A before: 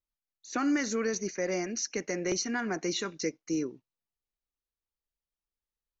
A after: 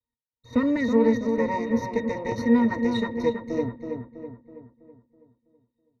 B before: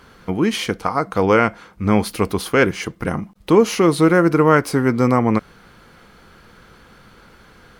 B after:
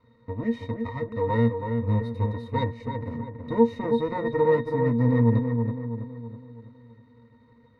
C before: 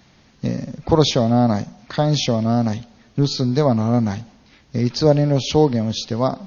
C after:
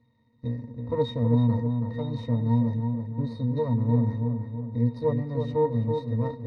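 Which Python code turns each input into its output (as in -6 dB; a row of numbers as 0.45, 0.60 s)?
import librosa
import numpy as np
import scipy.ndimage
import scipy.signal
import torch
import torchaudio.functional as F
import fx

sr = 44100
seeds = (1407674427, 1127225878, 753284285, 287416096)

y = np.maximum(x, 0.0)
y = fx.octave_resonator(y, sr, note='A#', decay_s=0.12)
y = fx.echo_filtered(y, sr, ms=326, feedback_pct=49, hz=2300.0, wet_db=-5.5)
y = y * 10.0 ** (-26 / 20.0) / np.sqrt(np.mean(np.square(y)))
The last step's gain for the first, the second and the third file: +22.5, +4.0, +1.0 dB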